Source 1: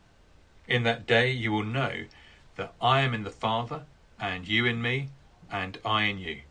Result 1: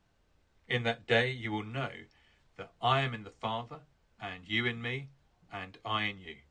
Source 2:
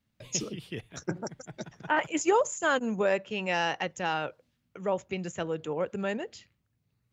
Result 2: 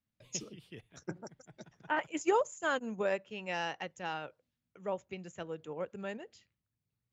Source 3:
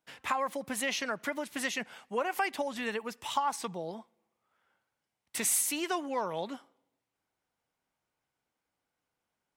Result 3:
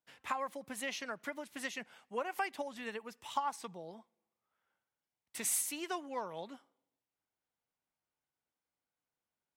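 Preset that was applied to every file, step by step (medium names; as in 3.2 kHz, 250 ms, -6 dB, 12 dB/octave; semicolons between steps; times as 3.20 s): upward expansion 1.5:1, over -36 dBFS; trim -4 dB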